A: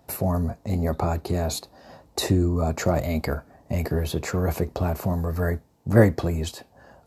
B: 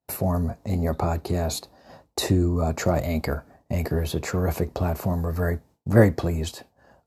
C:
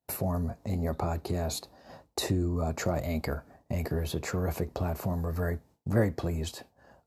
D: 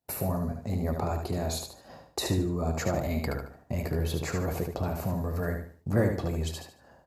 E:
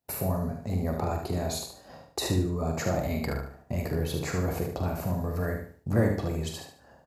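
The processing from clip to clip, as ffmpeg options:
-af "agate=range=-33dB:threshold=-44dB:ratio=3:detection=peak"
-af "acompressor=threshold=-32dB:ratio=1.5,volume=-2dB"
-af "aecho=1:1:74|148|222|296:0.531|0.175|0.0578|0.0191"
-filter_complex "[0:a]asplit=2[a][b];[b]adelay=44,volume=-7.5dB[c];[a][c]amix=inputs=2:normalize=0"

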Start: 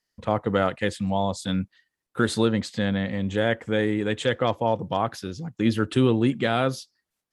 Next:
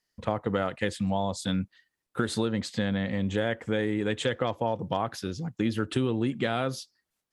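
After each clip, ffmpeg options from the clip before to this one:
-af "acompressor=threshold=-23dB:ratio=6"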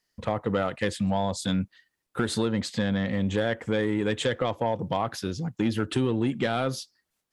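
-af "asoftclip=type=tanh:threshold=-18dB,volume=3dB"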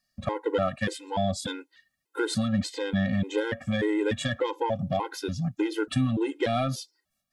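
-af "afftfilt=real='re*gt(sin(2*PI*1.7*pts/sr)*(1-2*mod(floor(b*sr/1024/270),2)),0)':imag='im*gt(sin(2*PI*1.7*pts/sr)*(1-2*mod(floor(b*sr/1024/270),2)),0)':win_size=1024:overlap=0.75,volume=2.5dB"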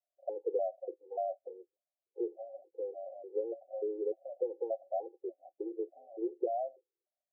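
-af "asuperpass=centerf=510:order=20:qfactor=1.2,volume=-5.5dB"

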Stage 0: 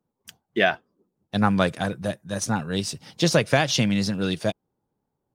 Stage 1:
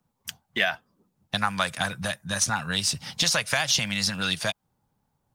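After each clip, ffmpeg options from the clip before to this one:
-filter_complex "[0:a]acrossover=split=580[a][b];[a]acompressor=threshold=-30dB:ratio=6[c];[c][b]amix=inputs=2:normalize=0,equalizer=f=380:t=o:w=1.3:g=-13,acrossover=split=880|6200[d][e][f];[d]acompressor=threshold=-40dB:ratio=4[g];[e]acompressor=threshold=-33dB:ratio=4[h];[f]acompressor=threshold=-36dB:ratio=4[i];[g][h][i]amix=inputs=3:normalize=0,volume=9dB"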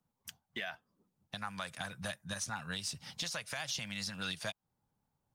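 -af "alimiter=limit=-17.5dB:level=0:latency=1:release=357,volume=-8.5dB"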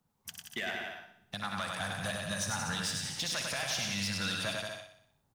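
-filter_complex "[0:a]asplit=2[a][b];[b]aecho=0:1:100|180|244|295.2|336.2:0.631|0.398|0.251|0.158|0.1[c];[a][c]amix=inputs=2:normalize=0,asoftclip=type=tanh:threshold=-31dB,asplit=2[d][e];[e]aecho=0:1:61|122|183|244|305|366|427:0.299|0.17|0.097|0.0553|0.0315|0.018|0.0102[f];[d][f]amix=inputs=2:normalize=0,volume=4.5dB"

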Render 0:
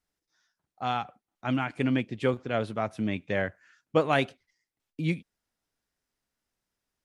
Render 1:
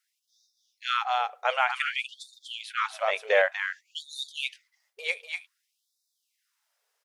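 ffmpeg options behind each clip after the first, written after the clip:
-filter_complex "[0:a]asplit=2[a][b];[b]aecho=0:1:244:0.562[c];[a][c]amix=inputs=2:normalize=0,afftfilt=real='re*gte(b*sr/1024,390*pow(3600/390,0.5+0.5*sin(2*PI*0.54*pts/sr)))':imag='im*gte(b*sr/1024,390*pow(3600/390,0.5+0.5*sin(2*PI*0.54*pts/sr)))':win_size=1024:overlap=0.75,volume=8dB"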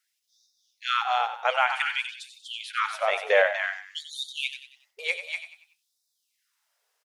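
-filter_complex "[0:a]asplit=5[a][b][c][d][e];[b]adelay=93,afreqshift=41,volume=-10.5dB[f];[c]adelay=186,afreqshift=82,volume=-18.7dB[g];[d]adelay=279,afreqshift=123,volume=-26.9dB[h];[e]adelay=372,afreqshift=164,volume=-35dB[i];[a][f][g][h][i]amix=inputs=5:normalize=0,volume=1.5dB"

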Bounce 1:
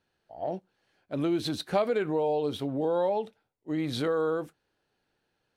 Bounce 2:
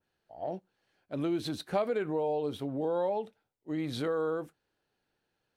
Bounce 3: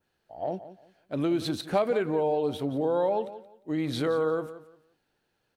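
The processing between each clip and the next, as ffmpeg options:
-af "adynamicequalizer=threshold=0.00316:dfrequency=4300:dqfactor=0.87:tfrequency=4300:tqfactor=0.87:attack=5:release=100:ratio=0.375:range=2:mode=cutabove:tftype=bell,volume=-3.5dB"
-af "aecho=1:1:175|350|525:0.188|0.0452|0.0108,volume=4.5dB"

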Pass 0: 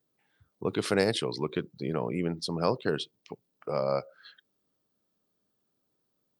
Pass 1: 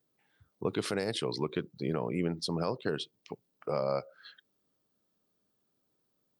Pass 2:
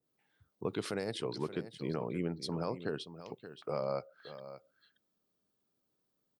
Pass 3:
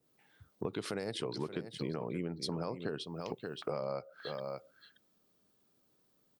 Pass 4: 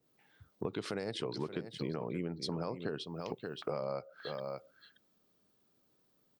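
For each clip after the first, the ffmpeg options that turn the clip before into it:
-af "alimiter=limit=-19dB:level=0:latency=1:release=336"
-af "aecho=1:1:577:0.224,adynamicequalizer=threshold=0.00501:dfrequency=1700:dqfactor=0.7:tfrequency=1700:tqfactor=0.7:attack=5:release=100:ratio=0.375:range=2:mode=cutabove:tftype=highshelf,volume=-4dB"
-af "acompressor=threshold=-43dB:ratio=5,volume=8.5dB"
-af "equalizer=f=11k:t=o:w=0.63:g=-9.5"

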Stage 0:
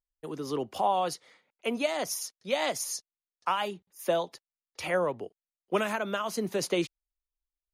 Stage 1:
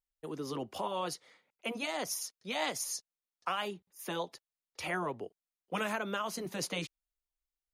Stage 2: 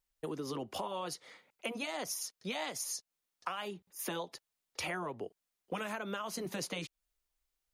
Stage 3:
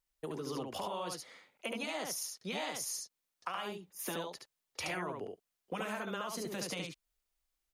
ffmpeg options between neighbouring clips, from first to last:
-af "afftfilt=real='re*lt(hypot(re,im),0.282)':imag='im*lt(hypot(re,im),0.282)':win_size=1024:overlap=0.75,volume=-3dB"
-af "acompressor=threshold=-43dB:ratio=6,volume=7dB"
-af "aecho=1:1:72:0.668,volume=-1.5dB"

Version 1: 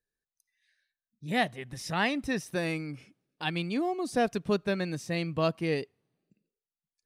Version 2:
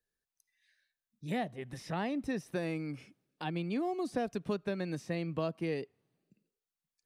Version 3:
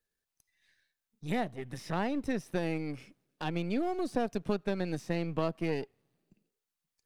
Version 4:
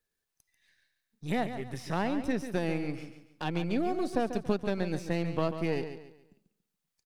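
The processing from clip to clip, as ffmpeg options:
-filter_complex "[0:a]acrossover=split=140|820|3100[a][b][c][d];[a]acompressor=threshold=-54dB:ratio=4[e];[b]acompressor=threshold=-32dB:ratio=4[f];[c]acompressor=threshold=-46dB:ratio=4[g];[d]acompressor=threshold=-56dB:ratio=4[h];[e][f][g][h]amix=inputs=4:normalize=0"
-af "aeval=exprs='if(lt(val(0),0),0.447*val(0),val(0))':c=same,volume=4.5dB"
-af "aecho=1:1:141|282|423|564:0.316|0.108|0.0366|0.0124,volume=1.5dB"

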